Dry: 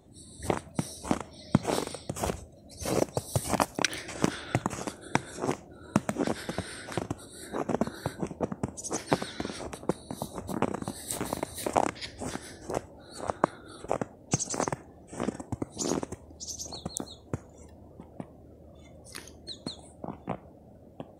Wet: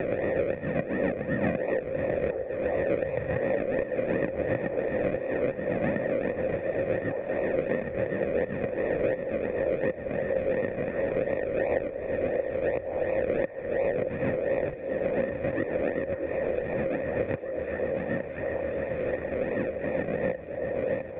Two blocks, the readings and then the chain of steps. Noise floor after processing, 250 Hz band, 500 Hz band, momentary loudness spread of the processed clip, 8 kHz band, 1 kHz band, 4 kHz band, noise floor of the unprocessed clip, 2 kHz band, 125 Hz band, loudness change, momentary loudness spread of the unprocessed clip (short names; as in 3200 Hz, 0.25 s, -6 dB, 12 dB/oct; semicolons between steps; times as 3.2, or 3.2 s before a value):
-37 dBFS, +1.5 dB, +10.0 dB, 3 LU, under -40 dB, -4.5 dB, under -15 dB, -53 dBFS, +5.5 dB, 0.0 dB, +4.5 dB, 16 LU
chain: spectral swells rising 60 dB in 1.20 s; low shelf 450 Hz +9.5 dB; in parallel at +1 dB: compressor, threshold -32 dBFS, peak gain reduction 24 dB; on the sum: harmonic tremolo 7.5 Hz, depth 70%, crossover 690 Hz; decimation with a swept rate 39×, swing 60% 2.8 Hz; vocal tract filter e; delay with a stepping band-pass 0.626 s, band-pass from 480 Hz, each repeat 0.7 oct, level -5.5 dB; three-band squash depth 100%; gain +5.5 dB